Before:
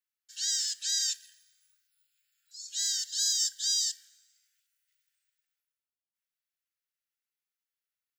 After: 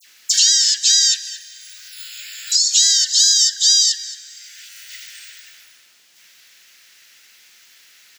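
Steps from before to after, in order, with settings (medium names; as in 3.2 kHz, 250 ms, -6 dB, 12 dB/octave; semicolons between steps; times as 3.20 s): high-order bell 3.3 kHz +10.5 dB 2.5 oct; phase dispersion lows, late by 68 ms, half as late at 2.3 kHz; on a send: delay 221 ms -22.5 dB; on the sum: three bands compressed up and down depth 100%; trim +6 dB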